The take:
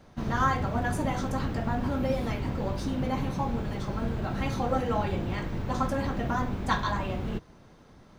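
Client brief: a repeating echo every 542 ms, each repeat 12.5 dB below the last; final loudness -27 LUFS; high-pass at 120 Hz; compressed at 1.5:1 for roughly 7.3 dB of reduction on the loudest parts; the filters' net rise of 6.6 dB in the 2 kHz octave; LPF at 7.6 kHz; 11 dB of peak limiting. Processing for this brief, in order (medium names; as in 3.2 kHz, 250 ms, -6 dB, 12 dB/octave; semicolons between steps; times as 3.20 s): high-pass 120 Hz; low-pass 7.6 kHz; peaking EQ 2 kHz +8.5 dB; compression 1.5:1, threshold -39 dBFS; peak limiter -27.5 dBFS; feedback delay 542 ms, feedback 24%, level -12.5 dB; trim +9.5 dB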